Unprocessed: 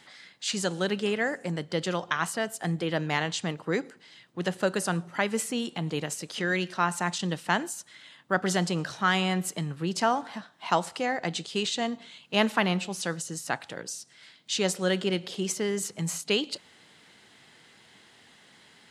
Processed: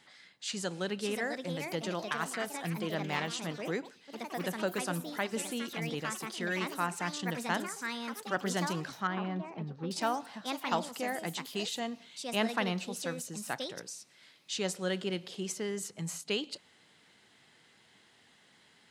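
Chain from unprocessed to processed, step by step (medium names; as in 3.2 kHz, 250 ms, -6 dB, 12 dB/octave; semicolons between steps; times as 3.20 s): ever faster or slower copies 662 ms, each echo +4 st, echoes 3, each echo -6 dB; 9.07–9.91 s: tape spacing loss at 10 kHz 44 dB; trim -7 dB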